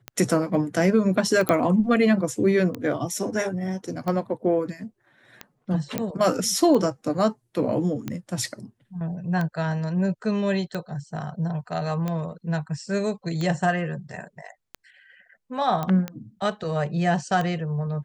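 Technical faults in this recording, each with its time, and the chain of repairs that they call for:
scratch tick 45 rpm −16 dBFS
0:01.49: click −8 dBFS
0:05.98: click −11 dBFS
0:15.83: click −15 dBFS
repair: click removal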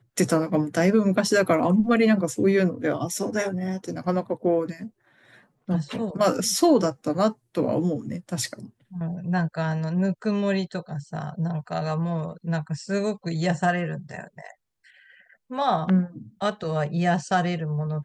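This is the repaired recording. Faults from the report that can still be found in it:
none of them is left

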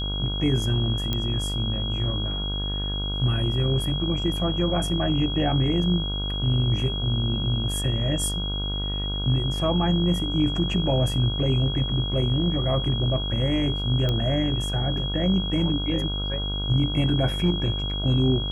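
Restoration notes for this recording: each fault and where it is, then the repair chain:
mains buzz 50 Hz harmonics 31 −29 dBFS
whistle 3,300 Hz −30 dBFS
0:01.13: click −12 dBFS
0:14.09: click −14 dBFS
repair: click removal
notch filter 3,300 Hz, Q 30
hum removal 50 Hz, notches 31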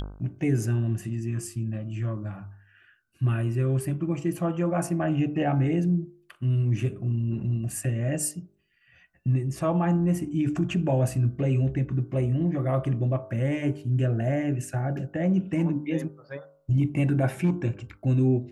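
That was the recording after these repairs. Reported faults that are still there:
0:14.09: click

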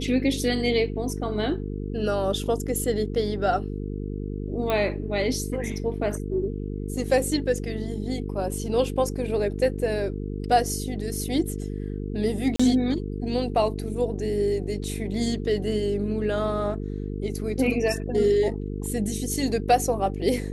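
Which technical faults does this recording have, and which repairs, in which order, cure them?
mains buzz 50 Hz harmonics 9 −31 dBFS
0:04.70: click −13 dBFS
0:12.56–0:12.60: drop-out 35 ms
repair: click removal
hum removal 50 Hz, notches 9
repair the gap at 0:12.56, 35 ms

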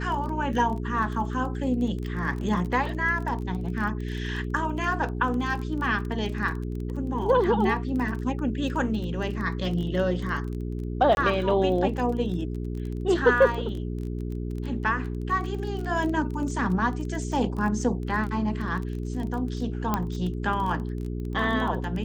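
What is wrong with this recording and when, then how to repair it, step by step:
surface crackle 21 per second −32 dBFS
mains hum 60 Hz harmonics 7 −31 dBFS
0:11.15–0:11.17: drop-out 21 ms
0:19.94: click −11 dBFS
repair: click removal
hum removal 60 Hz, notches 7
repair the gap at 0:11.15, 21 ms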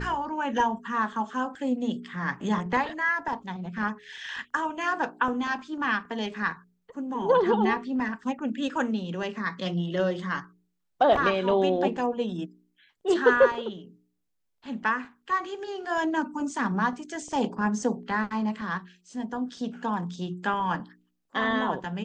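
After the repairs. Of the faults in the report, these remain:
0:19.94: click

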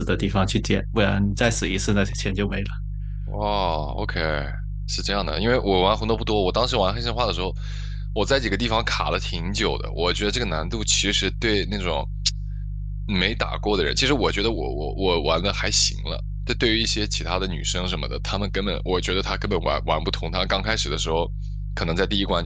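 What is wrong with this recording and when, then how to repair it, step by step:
mains hum 50 Hz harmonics 3 −29 dBFS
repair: hum removal 50 Hz, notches 3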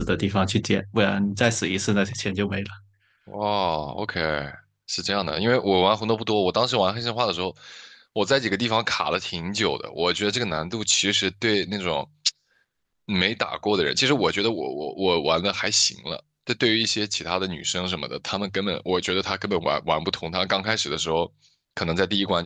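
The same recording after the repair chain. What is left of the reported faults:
none of them is left

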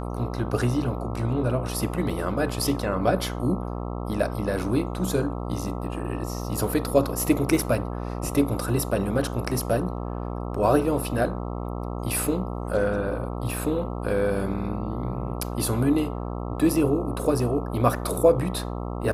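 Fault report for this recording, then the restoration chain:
mains buzz 60 Hz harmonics 22 −31 dBFS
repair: hum removal 60 Hz, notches 22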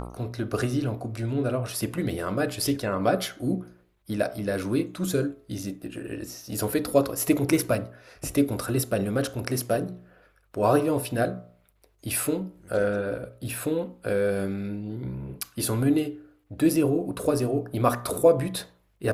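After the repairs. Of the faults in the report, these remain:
none of them is left

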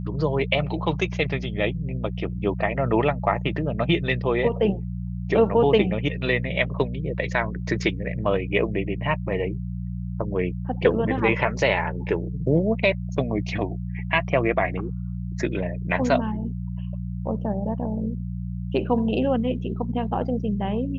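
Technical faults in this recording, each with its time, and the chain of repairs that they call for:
mains hum 60 Hz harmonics 3 −30 dBFS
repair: hum removal 60 Hz, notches 3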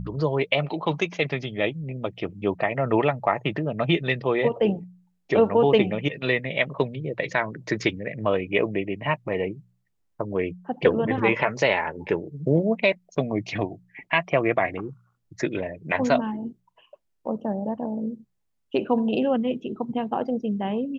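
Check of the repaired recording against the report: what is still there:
none of them is left

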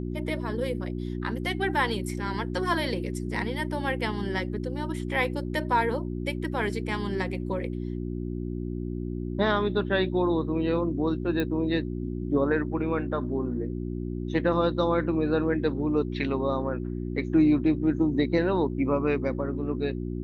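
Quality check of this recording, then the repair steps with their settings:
mains hum 60 Hz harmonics 6 −32 dBFS
0:11.40: click −16 dBFS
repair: click removal
hum removal 60 Hz, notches 6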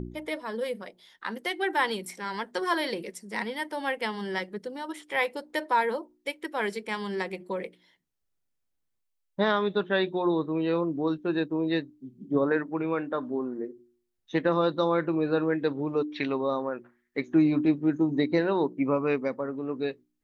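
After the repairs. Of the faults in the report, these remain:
none of them is left

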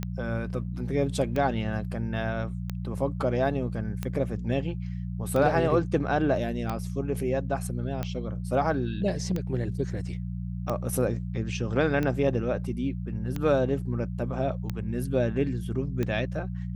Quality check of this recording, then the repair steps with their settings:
mains hum 60 Hz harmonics 3 −33 dBFS
scratch tick 45 rpm −17 dBFS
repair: click removal
hum removal 60 Hz, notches 3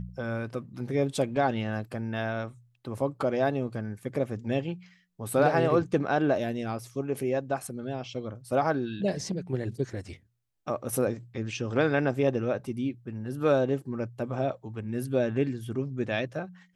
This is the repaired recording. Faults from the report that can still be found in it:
none of them is left

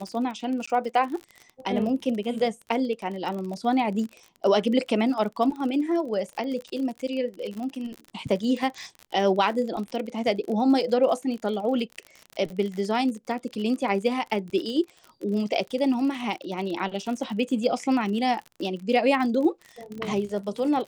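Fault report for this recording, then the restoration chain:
surface crackle 45 per second −32 dBFS
0:00.66–0:00.68: drop-out 15 ms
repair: click removal
repair the gap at 0:00.66, 15 ms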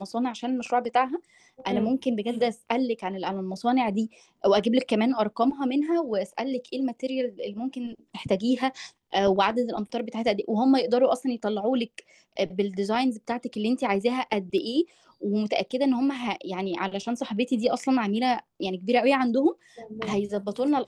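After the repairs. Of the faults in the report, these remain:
none of them is left

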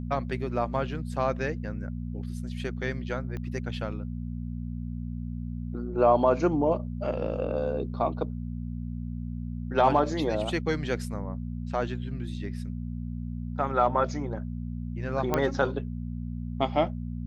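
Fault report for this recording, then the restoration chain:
mains hum 60 Hz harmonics 4 −34 dBFS
0:03.37: click −25 dBFS
0:15.34: click −11 dBFS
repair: click removal
hum removal 60 Hz, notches 4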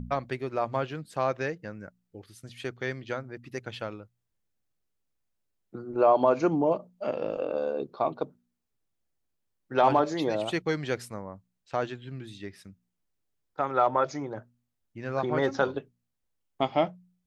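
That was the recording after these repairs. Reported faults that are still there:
0:03.37: click

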